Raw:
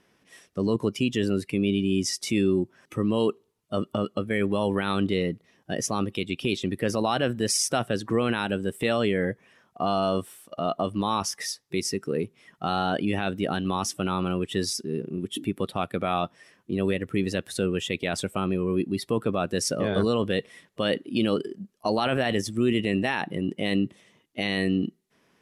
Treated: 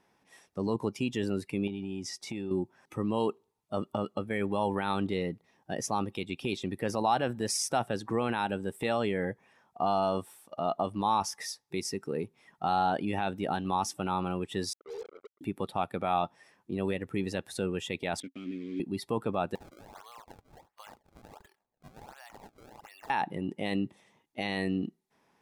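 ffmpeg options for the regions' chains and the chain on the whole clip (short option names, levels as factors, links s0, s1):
-filter_complex "[0:a]asettb=1/sr,asplit=3[s0][s1][s2];[s0]atrim=end=1.674[s3];[s1]atrim=start=1.67:end=2.51,asetpts=PTS-STARTPTS,afade=t=in:d=0.004:c=qsin,afade=t=out:st=0.836:d=0.004:c=qsin,highshelf=f=6900:g=-11,acompressor=threshold=0.0447:ratio=4:attack=3.2:release=140:knee=1:detection=peak[s4];[s2]atrim=start=2.506[s5];[s3][s4]acrossfade=d=0.004:c1=hsin:c2=qsin[s6];[s6][s5]acrossfade=d=0.004:c1=qsin:c2=hsin,asettb=1/sr,asplit=3[s7][s8][s9];[s7]atrim=end=14.734[s10];[s8]atrim=start=14.73:end=15.41,asetpts=PTS-STARTPTS,afade=t=in:d=0.004:c=qsin,afade=t=out:st=0.676:d=0.004:c=qsin,asuperpass=centerf=500:order=8:qfactor=2.9,aecho=1:1:2.3:0.67,atrim=end_sample=29988,acrusher=bits=6:mix=0:aa=0.5[s11];[s9]atrim=start=15.406[s12];[s10][s11]acrossfade=d=0.004:c1=hsin:c2=qsin[s13];[s13][s12]acrossfade=d=0.004:c1=qsin:c2=hsin,asettb=1/sr,asplit=3[s14][s15][s16];[s14]atrim=end=18.204[s17];[s15]atrim=start=18.2:end=18.8,asetpts=PTS-STARTPTS,afade=t=in:d=0.004:c=qsin,afade=t=out:st=0.596:d=0.004:c=qsin,acontrast=27,acrusher=bits=4:mix=0:aa=0.5,asplit=3[s18][s19][s20];[s18]bandpass=f=270:t=q:w=8,volume=1[s21];[s19]bandpass=f=2290:t=q:w=8,volume=0.501[s22];[s20]bandpass=f=3010:t=q:w=8,volume=0.355[s23];[s21][s22][s23]amix=inputs=3:normalize=0[s24];[s16]atrim=start=18.796[s25];[s17][s24]acrossfade=d=0.004:c1=hsin:c2=qsin[s26];[s26][s25]acrossfade=d=0.004:c1=qsin:c2=hsin,asettb=1/sr,asplit=3[s27][s28][s29];[s27]atrim=end=19.554[s30];[s28]atrim=start=19.55:end=23.1,asetpts=PTS-STARTPTS,afade=t=in:d=0.004:c=qsin,afade=t=out:st=3.546:d=0.004:c=qsin,highpass=f=880:w=0.5412,highpass=f=880:w=1.3066,acompressor=threshold=0.00708:ratio=5:attack=3.2:release=140:knee=1:detection=peak,acrusher=samples=28:mix=1:aa=0.000001:lfo=1:lforange=44.8:lforate=1.4[s31];[s29]atrim=start=23.096[s32];[s30][s31]acrossfade=d=0.004:c1=hsin:c2=qsin[s33];[s33][s32]acrossfade=d=0.004:c1=qsin:c2=hsin,equalizer=f=850:w=3.3:g=11.5,bandreject=f=3000:w=16,volume=0.473"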